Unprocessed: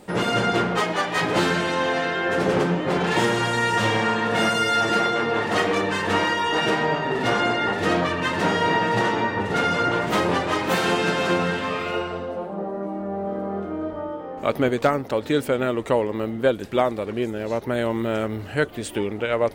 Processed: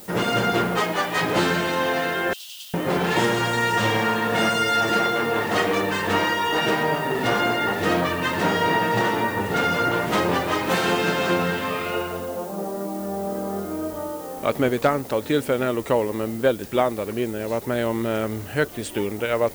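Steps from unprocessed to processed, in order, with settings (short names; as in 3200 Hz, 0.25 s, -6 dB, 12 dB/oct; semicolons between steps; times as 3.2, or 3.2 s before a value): 2.33–2.74 steep high-pass 2800 Hz 96 dB/oct; added noise blue -44 dBFS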